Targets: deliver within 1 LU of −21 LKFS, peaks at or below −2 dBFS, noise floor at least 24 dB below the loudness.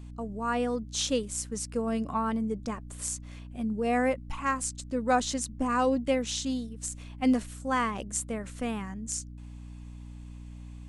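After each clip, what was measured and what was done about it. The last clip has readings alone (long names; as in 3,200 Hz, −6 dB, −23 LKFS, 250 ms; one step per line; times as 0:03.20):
mains hum 60 Hz; hum harmonics up to 300 Hz; level of the hum −41 dBFS; integrated loudness −30.5 LKFS; sample peak −12.5 dBFS; target loudness −21.0 LKFS
→ hum removal 60 Hz, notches 5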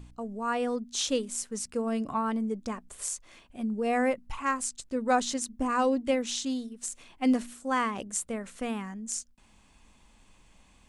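mains hum none found; integrated loudness −30.5 LKFS; sample peak −12.5 dBFS; target loudness −21.0 LKFS
→ level +9.5 dB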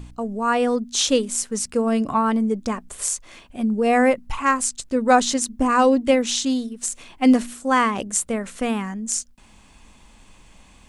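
integrated loudness −21.0 LKFS; sample peak −3.0 dBFS; background noise floor −51 dBFS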